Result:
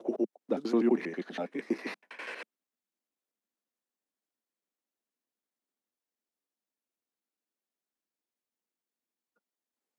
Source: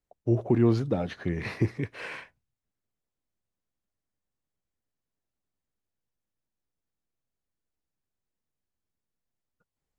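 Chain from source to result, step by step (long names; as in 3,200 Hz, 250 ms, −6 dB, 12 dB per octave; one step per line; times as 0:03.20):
slices reordered back to front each 81 ms, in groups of 6
Butterworth high-pass 210 Hz 48 dB per octave
level −2 dB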